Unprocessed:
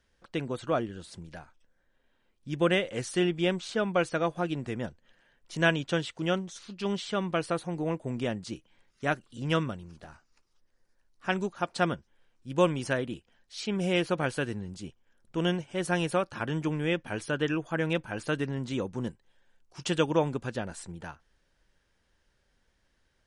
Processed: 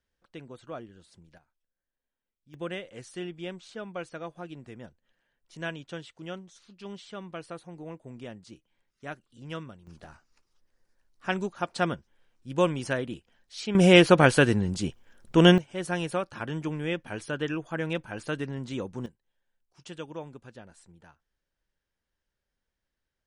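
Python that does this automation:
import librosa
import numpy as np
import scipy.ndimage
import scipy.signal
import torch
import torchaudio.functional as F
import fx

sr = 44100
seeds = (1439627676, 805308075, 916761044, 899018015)

y = fx.gain(x, sr, db=fx.steps((0.0, -11.5), (1.38, -19.5), (2.54, -10.5), (9.87, 0.0), (13.75, 11.0), (15.58, -2.0), (19.06, -13.5)))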